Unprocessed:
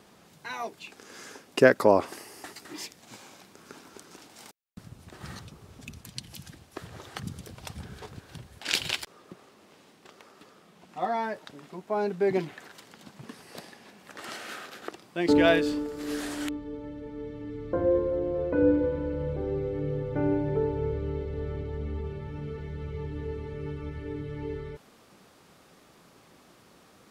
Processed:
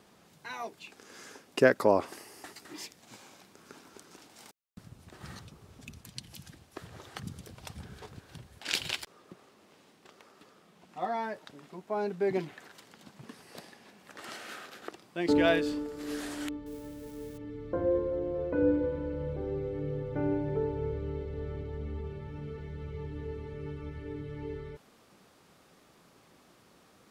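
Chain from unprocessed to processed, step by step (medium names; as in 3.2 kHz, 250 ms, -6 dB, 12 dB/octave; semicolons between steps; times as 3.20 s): 16.66–17.38 s: zero-crossing glitches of -38 dBFS; trim -4 dB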